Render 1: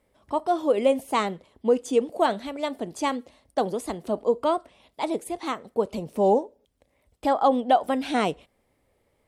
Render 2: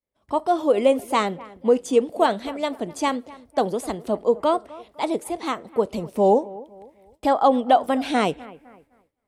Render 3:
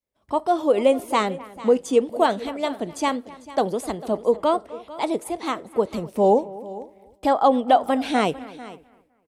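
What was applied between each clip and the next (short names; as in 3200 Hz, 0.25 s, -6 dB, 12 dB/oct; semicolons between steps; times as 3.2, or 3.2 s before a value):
analogue delay 0.254 s, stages 4096, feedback 38%, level -20 dB; expander -53 dBFS; gain +3 dB
echo 0.447 s -18 dB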